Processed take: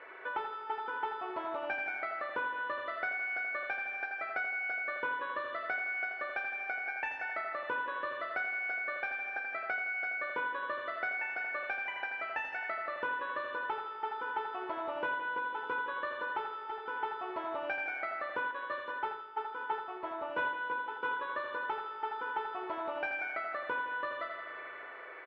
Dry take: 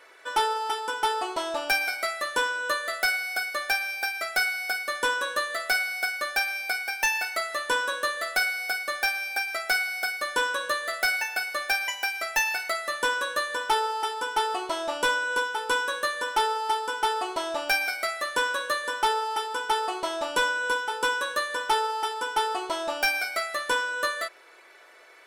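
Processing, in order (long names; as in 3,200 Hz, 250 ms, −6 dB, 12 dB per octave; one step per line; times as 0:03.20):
low-pass filter 2,300 Hz 24 dB per octave
double-tracking delay 19 ms −10 dB
repeating echo 82 ms, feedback 46%, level −6 dB
spring reverb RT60 2.8 s, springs 37 ms, chirp 75 ms, DRR 9 dB
downward compressor 2.5 to 1, threshold −43 dBFS, peak gain reduction 15.5 dB
high-pass filter 58 Hz
hum removal 87.9 Hz, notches 14
0:18.51–0:21.17: multiband upward and downward expander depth 100%
level +3 dB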